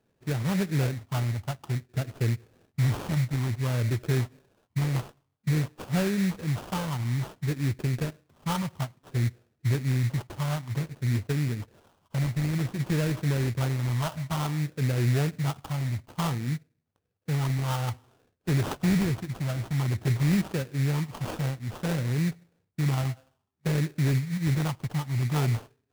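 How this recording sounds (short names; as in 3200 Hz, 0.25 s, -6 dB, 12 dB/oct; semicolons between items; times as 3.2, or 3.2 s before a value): phasing stages 8, 0.55 Hz, lowest notch 400–1400 Hz; aliases and images of a low sample rate 2100 Hz, jitter 20%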